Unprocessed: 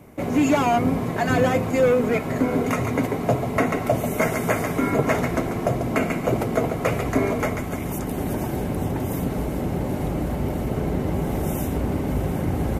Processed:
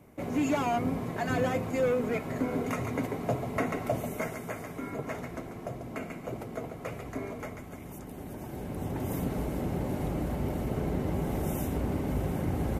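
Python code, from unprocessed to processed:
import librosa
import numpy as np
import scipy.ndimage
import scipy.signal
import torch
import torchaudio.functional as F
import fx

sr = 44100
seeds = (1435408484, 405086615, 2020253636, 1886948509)

y = fx.gain(x, sr, db=fx.line((3.98, -9.0), (4.47, -15.5), (8.34, -15.5), (9.1, -6.5)))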